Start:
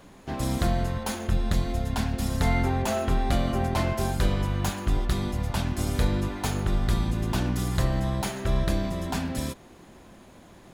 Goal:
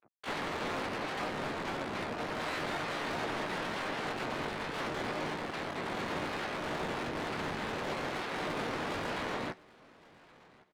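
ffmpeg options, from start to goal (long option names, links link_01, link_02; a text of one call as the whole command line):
ffmpeg -i in.wav -filter_complex "[0:a]afftdn=noise_reduction=21:noise_floor=-41,afftfilt=real='re*gte(hypot(re,im),0.0158)':imag='im*gte(hypot(re,im),0.0158)':win_size=1024:overlap=0.75,asplit=2[link_01][link_02];[link_02]alimiter=limit=-22dB:level=0:latency=1:release=64,volume=2.5dB[link_03];[link_01][link_03]amix=inputs=2:normalize=0,acompressor=threshold=-31dB:ratio=12,acrusher=bits=5:mix=0:aa=0.5,aeval=exprs='(mod(31.6*val(0)+1,2)-1)/31.6':channel_layout=same,highpass=frequency=290:width_type=q:width=0.5412,highpass=frequency=290:width_type=q:width=1.307,lowpass=frequency=2300:width_type=q:width=0.5176,lowpass=frequency=2300:width_type=q:width=0.7071,lowpass=frequency=2300:width_type=q:width=1.932,afreqshift=-89,asoftclip=type=tanh:threshold=-39dB,asplit=2[link_04][link_05];[link_05]adelay=13,volume=-9.5dB[link_06];[link_04][link_06]amix=inputs=2:normalize=0,asplit=2[link_07][link_08];[link_08]aecho=0:1:1111|2222:0.0708|0.0142[link_09];[link_07][link_09]amix=inputs=2:normalize=0,asplit=4[link_10][link_11][link_12][link_13];[link_11]asetrate=22050,aresample=44100,atempo=2,volume=-5dB[link_14];[link_12]asetrate=52444,aresample=44100,atempo=0.840896,volume=-3dB[link_15];[link_13]asetrate=88200,aresample=44100,atempo=0.5,volume=-3dB[link_16];[link_10][link_14][link_15][link_16]amix=inputs=4:normalize=0,volume=3dB" out.wav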